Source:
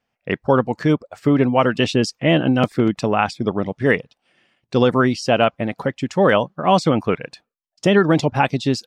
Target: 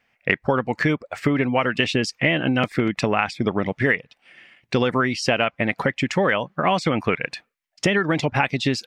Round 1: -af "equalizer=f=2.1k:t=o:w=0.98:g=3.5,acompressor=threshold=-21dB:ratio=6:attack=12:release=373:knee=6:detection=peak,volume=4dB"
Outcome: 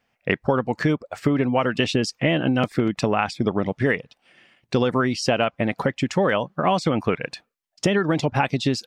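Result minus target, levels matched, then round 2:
2000 Hz band -4.0 dB
-af "equalizer=f=2.1k:t=o:w=0.98:g=12,acompressor=threshold=-21dB:ratio=6:attack=12:release=373:knee=6:detection=peak,volume=4dB"

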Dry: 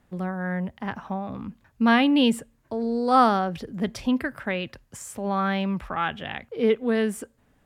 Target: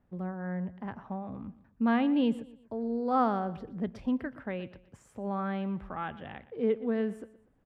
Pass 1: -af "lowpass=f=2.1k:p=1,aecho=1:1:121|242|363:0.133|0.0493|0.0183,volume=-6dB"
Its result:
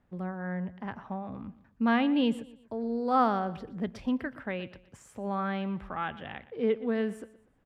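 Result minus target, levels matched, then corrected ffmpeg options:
2000 Hz band +3.5 dB
-af "lowpass=f=900:p=1,aecho=1:1:121|242|363:0.133|0.0493|0.0183,volume=-6dB"

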